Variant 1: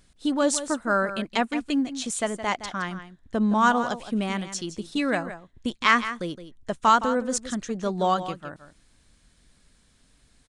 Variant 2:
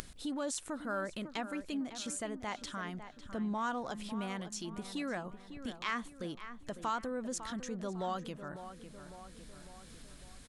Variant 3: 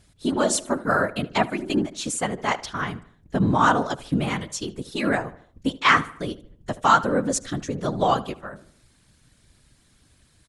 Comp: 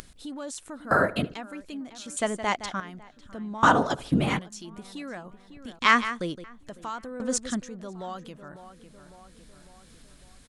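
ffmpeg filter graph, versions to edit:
-filter_complex "[2:a]asplit=2[a][b];[0:a]asplit=3[c][d][e];[1:a]asplit=6[f][g][h][i][j][k];[f]atrim=end=0.912[l];[a]atrim=start=0.908:end=1.342[m];[g]atrim=start=1.338:end=2.172[n];[c]atrim=start=2.168:end=2.802[o];[h]atrim=start=2.798:end=3.632[p];[b]atrim=start=3.628:end=4.392[q];[i]atrim=start=4.388:end=5.792[r];[d]atrim=start=5.788:end=6.442[s];[j]atrim=start=6.438:end=7.202[t];[e]atrim=start=7.198:end=7.622[u];[k]atrim=start=7.618[v];[l][m]acrossfade=d=0.004:c1=hsin:c2=hsin[w];[w][n]acrossfade=d=0.004:c1=hsin:c2=hsin[x];[x][o]acrossfade=d=0.004:c1=hsin:c2=hsin[y];[y][p]acrossfade=d=0.004:c1=hsin:c2=hsin[z];[z][q]acrossfade=d=0.004:c1=hsin:c2=hsin[aa];[aa][r]acrossfade=d=0.004:c1=hsin:c2=hsin[ab];[ab][s]acrossfade=d=0.004:c1=hsin:c2=hsin[ac];[ac][t]acrossfade=d=0.004:c1=hsin:c2=hsin[ad];[ad][u]acrossfade=d=0.004:c1=hsin:c2=hsin[ae];[ae][v]acrossfade=d=0.004:c1=hsin:c2=hsin"

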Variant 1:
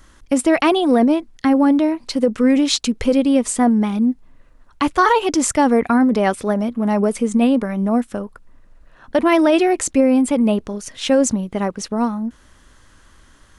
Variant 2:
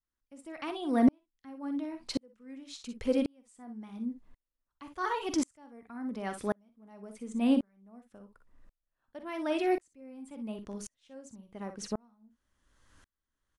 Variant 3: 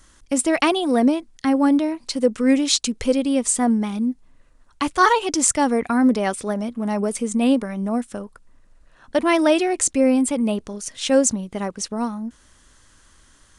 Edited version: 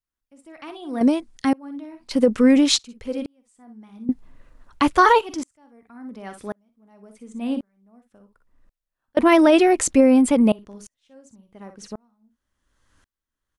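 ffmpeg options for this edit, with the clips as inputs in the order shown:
-filter_complex "[0:a]asplit=3[a][b][c];[1:a]asplit=5[d][e][f][g][h];[d]atrim=end=1.012[i];[2:a]atrim=start=1.008:end=1.532[j];[e]atrim=start=1.528:end=2.112[k];[a]atrim=start=2.108:end=2.792[l];[f]atrim=start=2.788:end=4.092[m];[b]atrim=start=4.088:end=5.212[n];[g]atrim=start=5.208:end=9.172[o];[c]atrim=start=9.168:end=10.522[p];[h]atrim=start=10.518[q];[i][j]acrossfade=d=0.004:c1=hsin:c2=hsin[r];[r][k]acrossfade=d=0.004:c1=hsin:c2=hsin[s];[s][l]acrossfade=d=0.004:c1=hsin:c2=hsin[t];[t][m]acrossfade=d=0.004:c1=hsin:c2=hsin[u];[u][n]acrossfade=d=0.004:c1=hsin:c2=hsin[v];[v][o]acrossfade=d=0.004:c1=hsin:c2=hsin[w];[w][p]acrossfade=d=0.004:c1=hsin:c2=hsin[x];[x][q]acrossfade=d=0.004:c1=hsin:c2=hsin"

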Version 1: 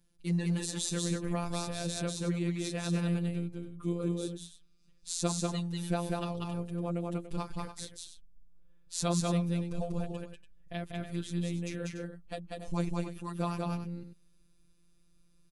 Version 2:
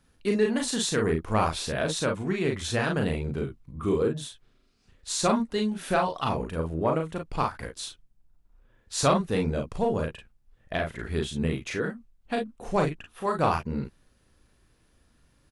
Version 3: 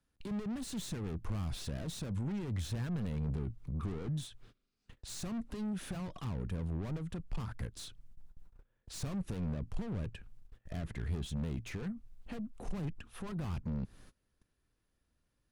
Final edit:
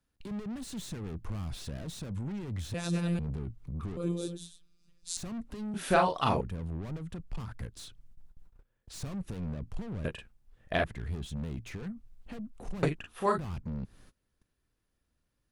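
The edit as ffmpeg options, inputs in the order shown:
-filter_complex "[0:a]asplit=2[a][b];[1:a]asplit=3[c][d][e];[2:a]asplit=6[f][g][h][i][j][k];[f]atrim=end=2.742[l];[a]atrim=start=2.738:end=3.192[m];[g]atrim=start=3.188:end=3.972[n];[b]atrim=start=3.968:end=5.172[o];[h]atrim=start=5.168:end=5.742[p];[c]atrim=start=5.738:end=6.412[q];[i]atrim=start=6.408:end=10.052[r];[d]atrim=start=10.048:end=10.842[s];[j]atrim=start=10.838:end=12.832[t];[e]atrim=start=12.828:end=13.382[u];[k]atrim=start=13.378[v];[l][m]acrossfade=d=0.004:c1=hsin:c2=hsin[w];[w][n]acrossfade=d=0.004:c1=hsin:c2=hsin[x];[x][o]acrossfade=d=0.004:c1=hsin:c2=hsin[y];[y][p]acrossfade=d=0.004:c1=hsin:c2=hsin[z];[z][q]acrossfade=d=0.004:c1=hsin:c2=hsin[aa];[aa][r]acrossfade=d=0.004:c1=hsin:c2=hsin[ab];[ab][s]acrossfade=d=0.004:c1=hsin:c2=hsin[ac];[ac][t]acrossfade=d=0.004:c1=hsin:c2=hsin[ad];[ad][u]acrossfade=d=0.004:c1=hsin:c2=hsin[ae];[ae][v]acrossfade=d=0.004:c1=hsin:c2=hsin"

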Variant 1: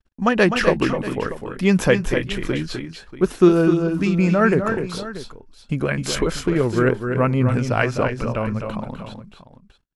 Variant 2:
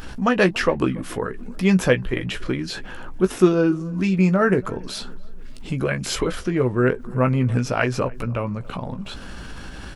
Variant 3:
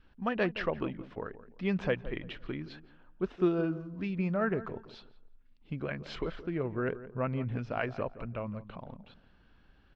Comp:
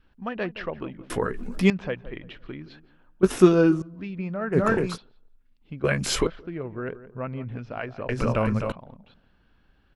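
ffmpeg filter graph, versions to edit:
-filter_complex "[1:a]asplit=3[a][b][c];[0:a]asplit=2[d][e];[2:a]asplit=6[f][g][h][i][j][k];[f]atrim=end=1.102[l];[a]atrim=start=1.098:end=1.702[m];[g]atrim=start=1.698:end=3.232[n];[b]atrim=start=3.228:end=3.822[o];[h]atrim=start=3.818:end=4.58[p];[d]atrim=start=4.52:end=4.98[q];[i]atrim=start=4.92:end=5.842[r];[c]atrim=start=5.838:end=6.272[s];[j]atrim=start=6.268:end=8.092[t];[e]atrim=start=8.088:end=8.722[u];[k]atrim=start=8.718[v];[l][m]acrossfade=d=0.004:c1=hsin:c2=hsin[w];[w][n]acrossfade=d=0.004:c1=hsin:c2=hsin[x];[x][o]acrossfade=d=0.004:c1=hsin:c2=hsin[y];[y][p]acrossfade=d=0.004:c1=hsin:c2=hsin[z];[z][q]acrossfade=d=0.06:c1=tri:c2=tri[aa];[aa][r]acrossfade=d=0.06:c1=tri:c2=tri[ab];[ab][s]acrossfade=d=0.004:c1=hsin:c2=hsin[ac];[ac][t]acrossfade=d=0.004:c1=hsin:c2=hsin[ad];[ad][u]acrossfade=d=0.004:c1=hsin:c2=hsin[ae];[ae][v]acrossfade=d=0.004:c1=hsin:c2=hsin"

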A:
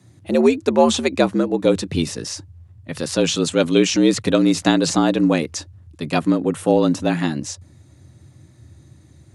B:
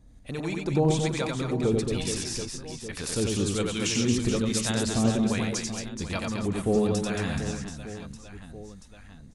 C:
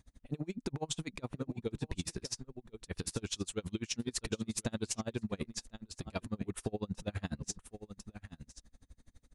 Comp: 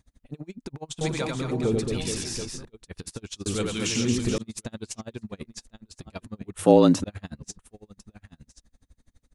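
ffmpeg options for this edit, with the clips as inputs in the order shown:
-filter_complex "[1:a]asplit=2[a][b];[2:a]asplit=4[c][d][e][f];[c]atrim=end=1.012[g];[a]atrim=start=1.008:end=2.652[h];[d]atrim=start=2.648:end=3.462[i];[b]atrim=start=3.458:end=4.382[j];[e]atrim=start=4.378:end=6.592[k];[0:a]atrim=start=6.588:end=7.042[l];[f]atrim=start=7.038[m];[g][h]acrossfade=d=0.004:c1=hsin:c2=hsin[n];[n][i]acrossfade=d=0.004:c1=hsin:c2=hsin[o];[o][j]acrossfade=d=0.004:c1=hsin:c2=hsin[p];[p][k]acrossfade=d=0.004:c1=hsin:c2=hsin[q];[q][l]acrossfade=d=0.004:c1=hsin:c2=hsin[r];[r][m]acrossfade=d=0.004:c1=hsin:c2=hsin"

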